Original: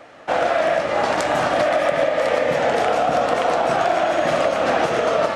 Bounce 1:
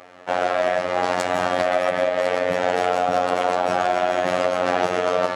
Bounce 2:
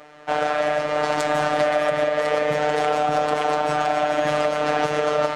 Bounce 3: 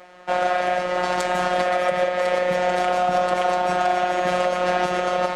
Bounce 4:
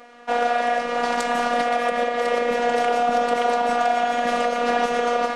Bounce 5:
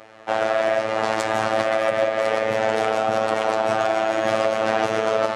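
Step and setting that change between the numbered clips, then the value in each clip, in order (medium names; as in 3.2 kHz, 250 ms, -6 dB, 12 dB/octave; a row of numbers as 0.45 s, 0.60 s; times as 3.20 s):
robot voice, frequency: 90 Hz, 150 Hz, 180 Hz, 240 Hz, 110 Hz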